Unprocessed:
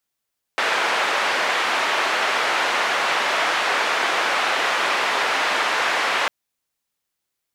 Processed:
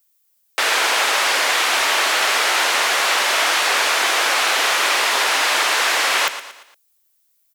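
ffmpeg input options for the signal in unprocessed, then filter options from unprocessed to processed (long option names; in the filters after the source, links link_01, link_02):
-f lavfi -i "anoisesrc=color=white:duration=5.7:sample_rate=44100:seed=1,highpass=frequency=570,lowpass=frequency=2000,volume=-4.8dB"
-af "highpass=frequency=250:width=0.5412,highpass=frequency=250:width=1.3066,aemphasis=mode=production:type=75kf,aecho=1:1:116|232|348|464:0.251|0.111|0.0486|0.0214"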